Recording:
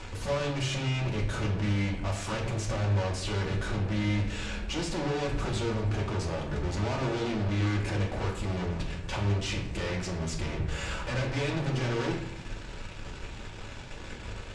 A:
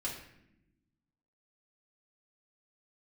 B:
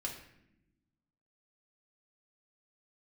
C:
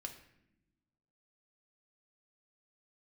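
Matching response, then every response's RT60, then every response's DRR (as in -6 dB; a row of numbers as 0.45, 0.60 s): B; 0.80 s, not exponential, not exponential; -6.5, -2.0, 3.0 dB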